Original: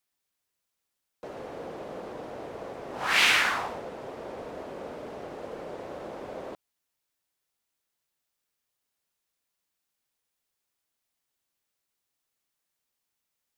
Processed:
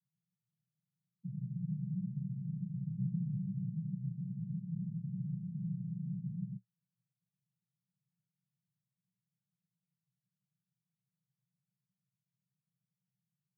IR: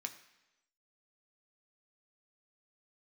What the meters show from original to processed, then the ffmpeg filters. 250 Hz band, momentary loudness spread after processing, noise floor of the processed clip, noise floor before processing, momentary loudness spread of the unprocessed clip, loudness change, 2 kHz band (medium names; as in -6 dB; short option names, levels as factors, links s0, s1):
+5.0 dB, 5 LU, under -85 dBFS, -83 dBFS, 19 LU, -10.0 dB, under -40 dB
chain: -af "asuperpass=centerf=150:order=12:qfactor=2,volume=7.08"